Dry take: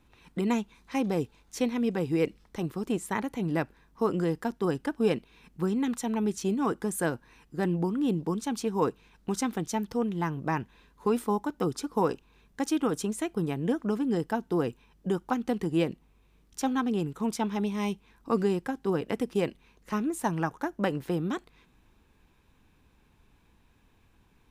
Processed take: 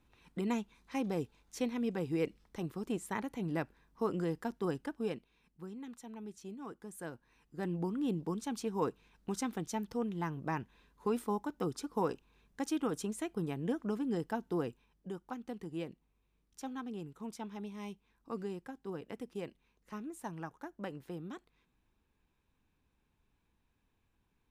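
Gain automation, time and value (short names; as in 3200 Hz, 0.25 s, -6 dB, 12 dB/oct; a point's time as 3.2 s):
4.71 s -7 dB
5.61 s -18 dB
6.81 s -18 dB
7.88 s -7 dB
14.57 s -7 dB
15.09 s -14 dB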